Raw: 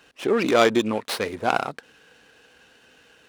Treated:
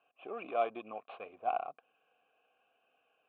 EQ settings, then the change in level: vowel filter a; steep low-pass 3.4 kHz 48 dB/octave; bass shelf 250 Hz +6 dB; -7.0 dB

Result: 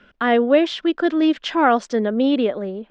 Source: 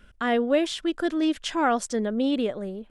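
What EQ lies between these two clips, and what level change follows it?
distance through air 120 m; three-band isolator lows -18 dB, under 170 Hz, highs -17 dB, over 6.6 kHz; +7.5 dB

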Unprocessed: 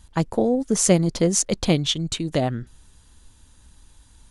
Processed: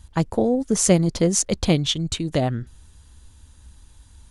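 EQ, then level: peaking EQ 73 Hz +8.5 dB 0.98 oct; 0.0 dB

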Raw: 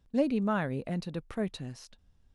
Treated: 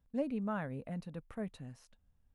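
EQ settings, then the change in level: peaking EQ 360 Hz -10 dB 0.24 oct; peaking EQ 4.6 kHz -9.5 dB 1.3 oct; -7.0 dB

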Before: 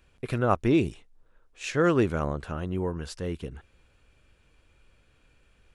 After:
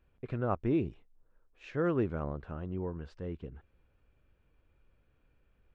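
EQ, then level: tape spacing loss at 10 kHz 34 dB; -6.0 dB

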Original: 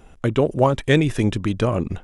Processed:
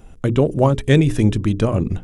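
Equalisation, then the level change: bass shelf 450 Hz +10 dB; treble shelf 4.2 kHz +7 dB; hum notches 60/120/180/240/300/360/420/480 Hz; -3.5 dB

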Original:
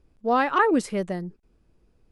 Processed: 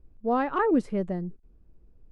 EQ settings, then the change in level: tilt EQ -4 dB/octave; bass shelf 220 Hz -6.5 dB; -5.5 dB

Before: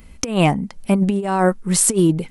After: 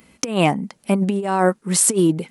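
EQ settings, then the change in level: high-pass 180 Hz 12 dB/octave; 0.0 dB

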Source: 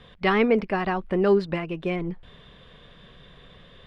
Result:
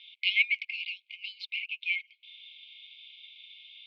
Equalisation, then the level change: brick-wall FIR high-pass 2.1 kHz; low-pass 3.8 kHz 24 dB/octave; +7.5 dB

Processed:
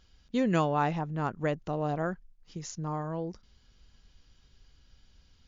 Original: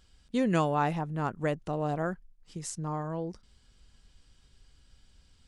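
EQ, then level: brick-wall FIR low-pass 7.2 kHz; 0.0 dB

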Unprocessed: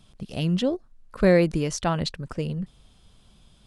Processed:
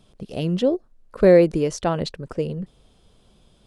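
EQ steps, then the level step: peaking EQ 450 Hz +9.5 dB 1.4 oct; -2.0 dB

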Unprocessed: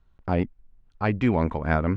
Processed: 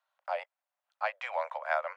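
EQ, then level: steep high-pass 550 Hz 96 dB/octave; -3.5 dB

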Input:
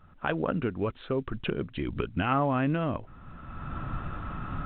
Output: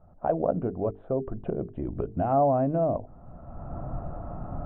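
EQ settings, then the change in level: resonant low-pass 680 Hz, resonance Q 4.9; bass shelf 230 Hz +4.5 dB; hum notches 50/100/150/200/250/300/350/400/450 Hz; -3.0 dB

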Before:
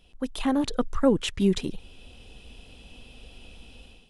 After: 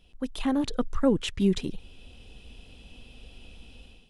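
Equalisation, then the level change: peaking EQ 850 Hz -3.5 dB 2.7 oct; treble shelf 5.6 kHz -5 dB; 0.0 dB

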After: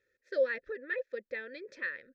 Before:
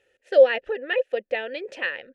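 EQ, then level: band-stop 690 Hz, Q 12; static phaser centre 2.9 kHz, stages 6; -7.5 dB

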